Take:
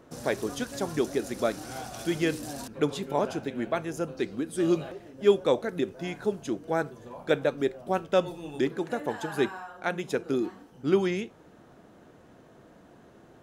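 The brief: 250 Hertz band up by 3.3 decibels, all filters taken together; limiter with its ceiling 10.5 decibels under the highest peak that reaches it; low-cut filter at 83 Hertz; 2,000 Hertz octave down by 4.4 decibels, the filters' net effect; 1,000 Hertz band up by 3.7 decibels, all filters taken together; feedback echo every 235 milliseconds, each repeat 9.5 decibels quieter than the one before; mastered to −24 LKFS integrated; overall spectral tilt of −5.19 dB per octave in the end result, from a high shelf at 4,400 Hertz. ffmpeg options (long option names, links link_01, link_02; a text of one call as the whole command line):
ffmpeg -i in.wav -af "highpass=83,equalizer=frequency=250:width_type=o:gain=4.5,equalizer=frequency=1000:width_type=o:gain=7,equalizer=frequency=2000:width_type=o:gain=-8,highshelf=frequency=4400:gain=-8,alimiter=limit=-18dB:level=0:latency=1,aecho=1:1:235|470|705|940:0.335|0.111|0.0365|0.012,volume=6.5dB" out.wav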